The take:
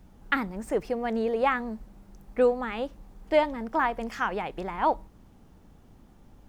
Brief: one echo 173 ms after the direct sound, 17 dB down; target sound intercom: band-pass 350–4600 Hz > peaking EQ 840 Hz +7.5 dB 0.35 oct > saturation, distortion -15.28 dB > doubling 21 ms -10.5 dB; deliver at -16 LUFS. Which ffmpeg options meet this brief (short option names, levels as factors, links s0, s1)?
-filter_complex "[0:a]highpass=350,lowpass=4600,equalizer=f=840:t=o:w=0.35:g=7.5,aecho=1:1:173:0.141,asoftclip=threshold=0.168,asplit=2[s0][s1];[s1]adelay=21,volume=0.299[s2];[s0][s2]amix=inputs=2:normalize=0,volume=4.22"